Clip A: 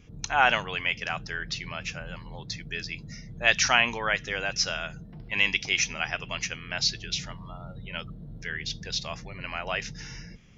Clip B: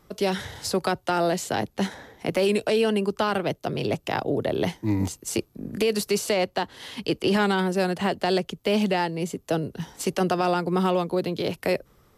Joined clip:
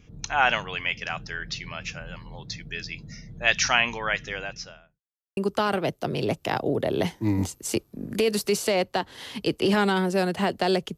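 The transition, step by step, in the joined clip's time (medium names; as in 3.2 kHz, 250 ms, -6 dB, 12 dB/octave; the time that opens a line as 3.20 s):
clip A
4.19–5.01 s: studio fade out
5.01–5.37 s: mute
5.37 s: go over to clip B from 2.99 s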